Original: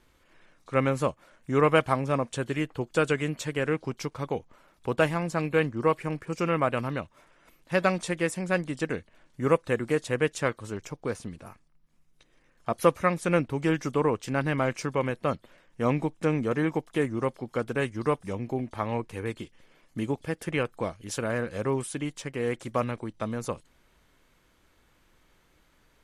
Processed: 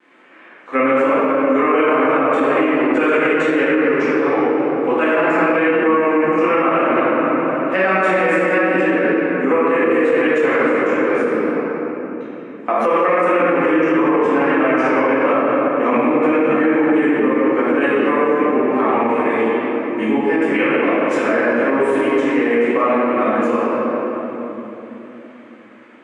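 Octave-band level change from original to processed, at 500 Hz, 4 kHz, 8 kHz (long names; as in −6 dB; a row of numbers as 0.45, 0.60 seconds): +13.5 dB, +6.0 dB, can't be measured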